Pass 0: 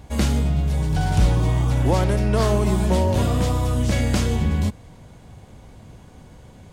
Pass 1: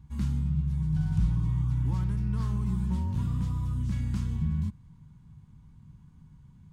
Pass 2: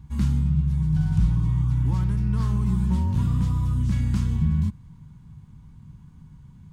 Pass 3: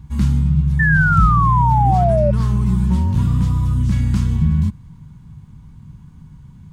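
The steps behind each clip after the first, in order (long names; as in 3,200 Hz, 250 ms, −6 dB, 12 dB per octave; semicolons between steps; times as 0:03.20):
drawn EQ curve 110 Hz 0 dB, 150 Hz +7 dB, 640 Hz −29 dB, 960 Hz −7 dB, 2,000 Hz −13 dB; level −9 dB
speech leveller 2 s; level +6 dB
sound drawn into the spectrogram fall, 0:00.79–0:02.31, 570–1,800 Hz −23 dBFS; level +6 dB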